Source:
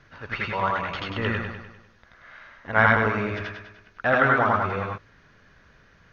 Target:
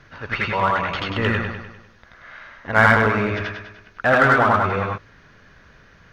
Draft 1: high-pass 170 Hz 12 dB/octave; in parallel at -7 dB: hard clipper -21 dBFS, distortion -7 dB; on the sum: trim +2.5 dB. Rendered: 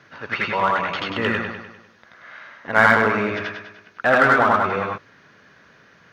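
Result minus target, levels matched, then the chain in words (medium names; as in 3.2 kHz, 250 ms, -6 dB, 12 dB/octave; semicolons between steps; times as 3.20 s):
125 Hz band -7.5 dB
in parallel at -7 dB: hard clipper -21 dBFS, distortion -7 dB; on the sum: trim +2.5 dB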